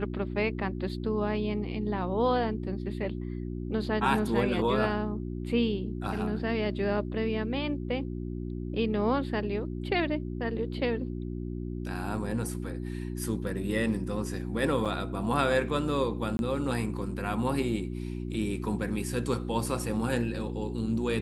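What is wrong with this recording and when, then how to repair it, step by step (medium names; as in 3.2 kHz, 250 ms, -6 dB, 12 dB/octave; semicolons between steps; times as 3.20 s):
hum 60 Hz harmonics 6 -35 dBFS
14.85–14.86 s: dropout 6.2 ms
16.37–16.39 s: dropout 21 ms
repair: de-hum 60 Hz, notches 6; interpolate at 14.85 s, 6.2 ms; interpolate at 16.37 s, 21 ms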